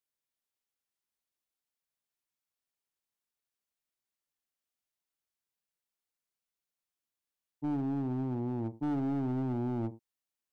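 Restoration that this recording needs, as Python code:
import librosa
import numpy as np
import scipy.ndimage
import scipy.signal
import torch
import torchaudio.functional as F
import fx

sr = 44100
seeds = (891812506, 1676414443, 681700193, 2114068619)

y = fx.fix_declip(x, sr, threshold_db=-29.0)
y = fx.fix_echo_inverse(y, sr, delay_ms=78, level_db=-16.0)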